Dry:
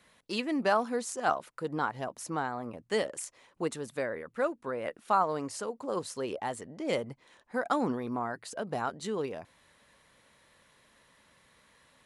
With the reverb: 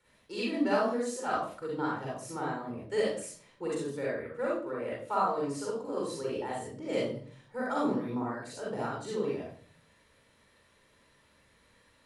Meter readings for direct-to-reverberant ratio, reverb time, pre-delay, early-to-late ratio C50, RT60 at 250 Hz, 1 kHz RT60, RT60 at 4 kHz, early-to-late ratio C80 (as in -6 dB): -5.5 dB, 0.45 s, 37 ms, -1.0 dB, 0.65 s, 0.40 s, 0.40 s, 5.5 dB